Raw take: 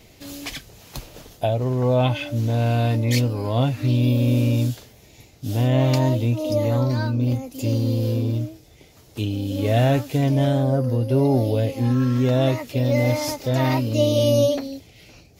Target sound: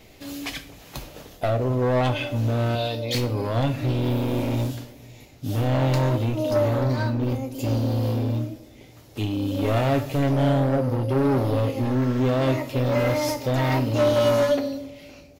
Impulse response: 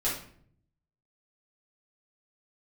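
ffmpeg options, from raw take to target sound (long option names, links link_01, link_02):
-filter_complex "[0:a]asettb=1/sr,asplit=3[link_01][link_02][link_03];[link_01]atrim=end=2.754[link_04];[link_02]atrim=start=2.75:end=3.15,asetpts=PTS-STARTPTS,afade=type=in:duration=0.004:curve=qsin,afade=type=out:start_time=0.396:duration=0.004:curve=qsin,equalizer=frequency=125:width_type=o:width=1:gain=-10,equalizer=frequency=250:width_type=o:width=1:gain=-11,equalizer=frequency=500:width_type=o:width=1:gain=4,equalizer=frequency=1000:width_type=o:width=1:gain=-5,equalizer=frequency=2000:width_type=o:width=1:gain=-8,equalizer=frequency=4000:width_type=o:width=1:gain=11,equalizer=frequency=8000:width_type=o:width=1:gain=-7[link_05];[link_03]atrim=start=3.146[link_06];[link_04][link_05]acrossfade=duration=0.004:curve1=hsin:curve2=qsin[link_07];[link_07][link_06]acrossfade=duration=0.004:curve1=qsin:curve2=hsin,asoftclip=type=hard:threshold=-19dB,bass=frequency=250:gain=-3,treble=frequency=4000:gain=-6,asplit=2[link_08][link_09];[link_09]adelay=262,lowpass=frequency=930:poles=1,volume=-19dB,asplit=2[link_10][link_11];[link_11]adelay=262,lowpass=frequency=930:poles=1,volume=0.48,asplit=2[link_12][link_13];[link_13]adelay=262,lowpass=frequency=930:poles=1,volume=0.48,asplit=2[link_14][link_15];[link_15]adelay=262,lowpass=frequency=930:poles=1,volume=0.48[link_16];[link_08][link_10][link_12][link_14][link_16]amix=inputs=5:normalize=0,asplit=2[link_17][link_18];[1:a]atrim=start_sample=2205,highshelf=frequency=7000:gain=11.5[link_19];[link_18][link_19]afir=irnorm=-1:irlink=0,volume=-15dB[link_20];[link_17][link_20]amix=inputs=2:normalize=0"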